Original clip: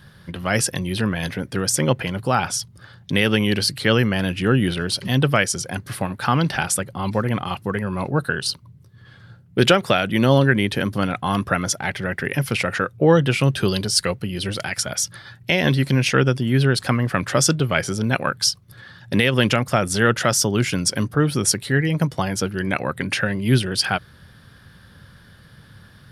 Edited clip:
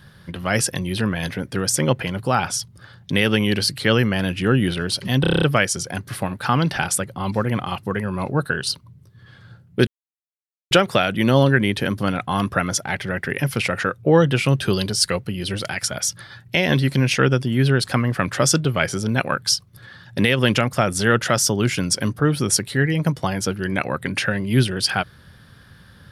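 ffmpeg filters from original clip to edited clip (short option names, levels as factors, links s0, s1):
-filter_complex "[0:a]asplit=9[s0][s1][s2][s3][s4][s5][s6][s7][s8];[s0]atrim=end=5.242[s9];[s1]atrim=start=5.208:end=5.242[s10];[s2]atrim=start=5.208:end=5.242[s11];[s3]atrim=start=5.208:end=5.242[s12];[s4]atrim=start=5.208:end=5.242[s13];[s5]atrim=start=5.208:end=5.242[s14];[s6]atrim=start=5.208:end=5.242[s15];[s7]atrim=start=5.208:end=9.66,asetpts=PTS-STARTPTS,afade=t=out:st=4.448:d=0.004:c=hsin,apad=pad_dur=0.84[s16];[s8]atrim=start=9.66,asetpts=PTS-STARTPTS,afade=t=in:d=0.004:c=hsin[s17];[s9][s10]acrossfade=d=0.004:c1=hsin:c2=hsin[s18];[s18][s11]acrossfade=d=0.004:c1=hsin:c2=hsin[s19];[s19][s12]acrossfade=d=0.004:c1=hsin:c2=hsin[s20];[s20][s13]acrossfade=d=0.004:c1=hsin:c2=hsin[s21];[s21][s14]acrossfade=d=0.004:c1=hsin:c2=hsin[s22];[s22][s15]acrossfade=d=0.004:c1=hsin:c2=hsin[s23];[s16][s17]concat=n=2:v=0:a=1[s24];[s23][s24]acrossfade=d=0.004:c1=hsin:c2=hsin"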